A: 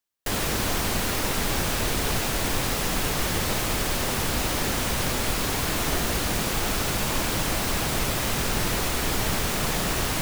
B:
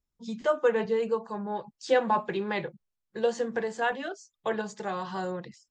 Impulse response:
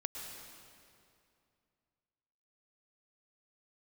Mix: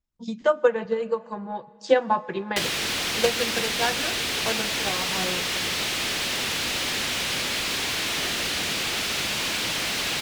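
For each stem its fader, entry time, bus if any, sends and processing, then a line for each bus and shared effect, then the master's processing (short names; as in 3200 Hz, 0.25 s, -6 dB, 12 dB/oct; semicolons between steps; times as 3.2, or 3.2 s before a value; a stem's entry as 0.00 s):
-2.5 dB, 2.30 s, send -9 dB, weighting filter D; soft clip -22 dBFS, distortion -11 dB
-1.5 dB, 0.00 s, send -12.5 dB, notch 420 Hz, Q 12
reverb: on, RT60 2.5 s, pre-delay 0.1 s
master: high shelf 6500 Hz -5 dB; transient shaper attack +7 dB, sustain -2 dB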